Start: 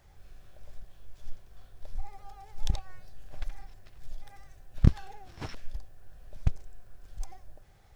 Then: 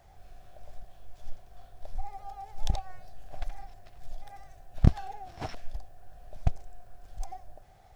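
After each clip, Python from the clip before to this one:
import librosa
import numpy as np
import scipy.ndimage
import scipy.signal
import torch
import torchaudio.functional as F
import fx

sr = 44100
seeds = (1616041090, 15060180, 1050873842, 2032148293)

y = fx.peak_eq(x, sr, hz=710.0, db=13.0, octaves=0.41)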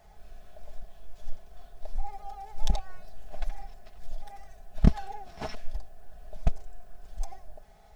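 y = x + 0.69 * np.pad(x, (int(4.7 * sr / 1000.0), 0))[:len(x)]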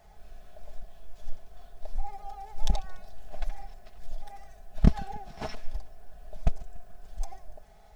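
y = fx.echo_feedback(x, sr, ms=144, feedback_pct=58, wet_db=-22.0)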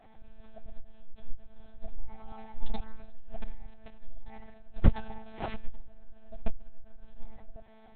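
y = fx.lpc_monotone(x, sr, seeds[0], pitch_hz=220.0, order=10)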